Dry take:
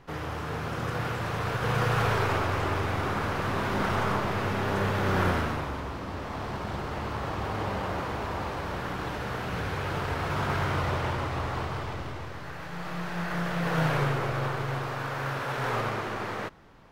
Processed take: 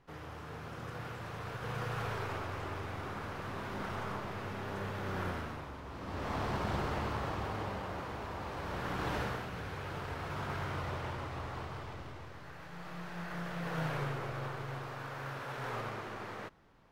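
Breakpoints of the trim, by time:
5.82 s -12 dB
6.29 s -1 dB
6.83 s -1 dB
7.84 s -9 dB
8.40 s -9 dB
9.19 s -1 dB
9.51 s -10 dB

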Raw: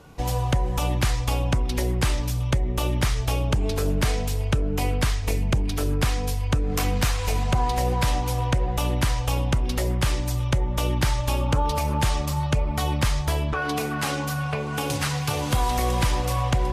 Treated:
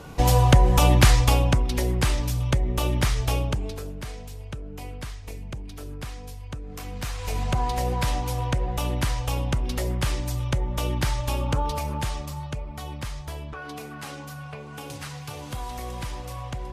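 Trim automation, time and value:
1.18 s +7 dB
1.68 s 0 dB
3.37 s 0 dB
3.93 s -13 dB
6.84 s -13 dB
7.43 s -2.5 dB
11.58 s -2.5 dB
12.70 s -11 dB

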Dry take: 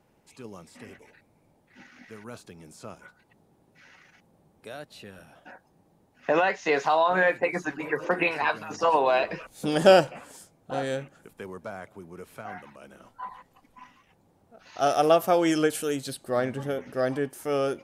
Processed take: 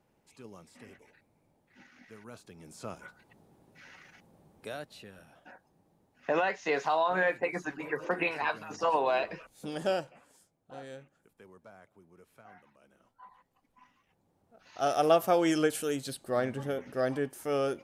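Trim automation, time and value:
2.43 s -6.5 dB
2.87 s +1 dB
4.69 s +1 dB
5.09 s -5.5 dB
9.18 s -5.5 dB
10.04 s -15.5 dB
13.27 s -15.5 dB
15.15 s -3.5 dB

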